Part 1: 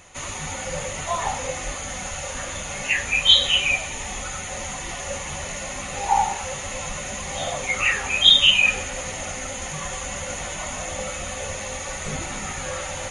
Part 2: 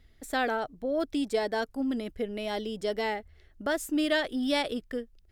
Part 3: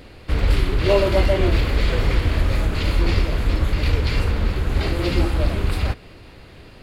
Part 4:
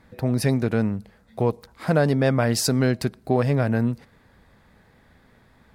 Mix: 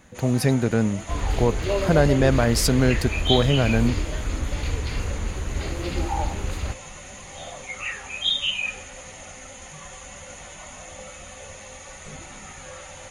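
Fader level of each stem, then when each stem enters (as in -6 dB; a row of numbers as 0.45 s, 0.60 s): -10.0 dB, -14.5 dB, -7.5 dB, +1.0 dB; 0.00 s, 0.00 s, 0.80 s, 0.00 s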